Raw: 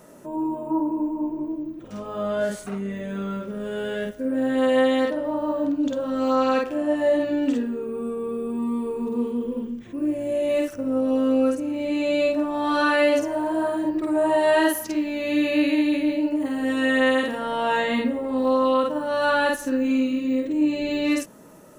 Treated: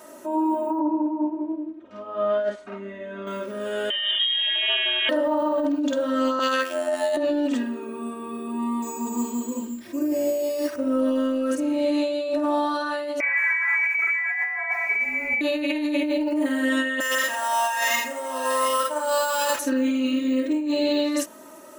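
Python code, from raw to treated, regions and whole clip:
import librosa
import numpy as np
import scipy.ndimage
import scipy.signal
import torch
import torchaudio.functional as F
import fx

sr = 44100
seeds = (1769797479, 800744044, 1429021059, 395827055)

y = fx.chain(x, sr, fx.lowpass(hz=4600.0, slope=12),
    fx.high_shelf(hz=3600.0, db=-11.0),
    fx.upward_expand(threshold_db=-38.0, expansion=1.5), at=(0.79, 3.27))
y = fx.chain(y, sr, fx.freq_invert(carrier_hz=3500),
    fx.env_flatten(amount_pct=50), at=(3.9, 5.09))
y = fx.chain(y, sr, fx.robotise(hz=87.4),
    fx.tilt_eq(slope=3.0), at=(6.39, 7.17))
y = fx.chain(y, sr, fx.savgol(points=9),
    fx.resample_bad(factor=6, down='none', up='hold'), at=(8.82, 10.76))
y = fx.chain(y, sr, fx.freq_invert(carrier_hz=2600),
    fx.echo_crushed(ms=166, feedback_pct=35, bits=8, wet_db=-15), at=(13.2, 15.41))
y = fx.chain(y, sr, fx.highpass(hz=680.0, slope=12),
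    fx.sample_hold(seeds[0], rate_hz=9000.0, jitter_pct=0),
    fx.echo_single(ms=720, db=-13.5), at=(17.0, 19.59))
y = fx.highpass(y, sr, hz=520.0, slope=6)
y = y + 0.82 * np.pad(y, (int(3.2 * sr / 1000.0), 0))[:len(y)]
y = fx.over_compress(y, sr, threshold_db=-25.0, ratio=-1.0)
y = y * librosa.db_to_amplitude(2.0)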